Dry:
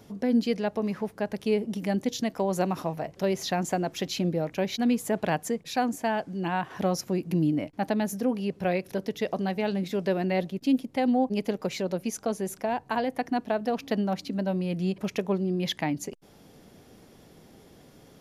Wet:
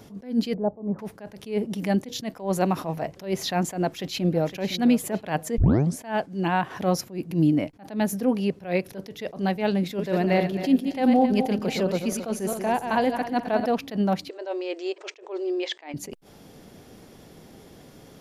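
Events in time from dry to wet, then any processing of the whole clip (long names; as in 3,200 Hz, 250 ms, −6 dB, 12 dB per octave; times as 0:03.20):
0:00.54–0:00.99: inverse Chebyshev low-pass filter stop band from 5,000 Hz, stop band 80 dB
0:03.77–0:04.67: delay throw 510 ms, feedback 40%, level −15 dB
0:05.58: tape start 0.41 s
0:09.85–0:13.66: feedback delay that plays each chunk backwards 134 ms, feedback 54%, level −7.5 dB
0:14.29–0:15.94: linear-phase brick-wall band-pass 310–8,700 Hz
whole clip: dynamic equaliser 6,200 Hz, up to −4 dB, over −53 dBFS, Q 2.1; level that may rise only so fast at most 170 dB per second; level +5 dB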